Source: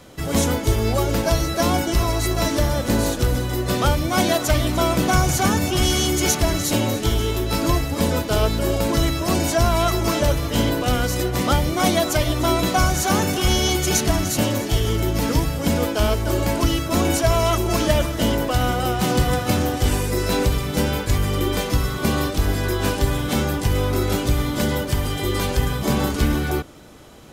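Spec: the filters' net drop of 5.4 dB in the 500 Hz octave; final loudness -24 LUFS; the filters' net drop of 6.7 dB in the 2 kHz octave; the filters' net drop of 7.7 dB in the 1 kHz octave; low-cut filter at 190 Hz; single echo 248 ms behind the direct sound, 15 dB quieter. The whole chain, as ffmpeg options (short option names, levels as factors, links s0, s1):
-af "highpass=190,equalizer=f=500:t=o:g=-4.5,equalizer=f=1000:t=o:g=-7.5,equalizer=f=2000:t=o:g=-6,aecho=1:1:248:0.178,volume=1.12"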